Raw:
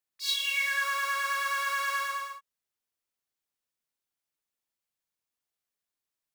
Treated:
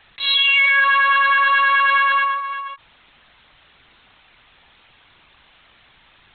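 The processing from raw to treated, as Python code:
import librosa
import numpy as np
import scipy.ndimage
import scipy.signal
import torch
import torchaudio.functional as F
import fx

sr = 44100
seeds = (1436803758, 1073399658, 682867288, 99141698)

p1 = fx.peak_eq(x, sr, hz=440.0, db=-14.0, octaves=0.48)
p2 = fx.leveller(p1, sr, passes=2)
p3 = p2 + fx.echo_single(p2, sr, ms=355, db=-19.5, dry=0)
p4 = fx.lpc_vocoder(p3, sr, seeds[0], excitation='pitch_kept', order=16)
p5 = fx.env_flatten(p4, sr, amount_pct=50)
y = p5 * 10.0 ** (8.0 / 20.0)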